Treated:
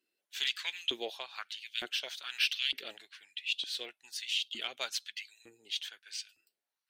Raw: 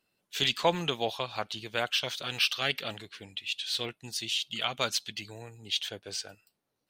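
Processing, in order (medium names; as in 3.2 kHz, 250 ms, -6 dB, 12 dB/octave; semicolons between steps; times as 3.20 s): Chebyshev shaper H 7 -36 dB, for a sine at -10.5 dBFS; high-order bell 770 Hz -9.5 dB; LFO high-pass saw up 1.1 Hz 310–3700 Hz; trim -5.5 dB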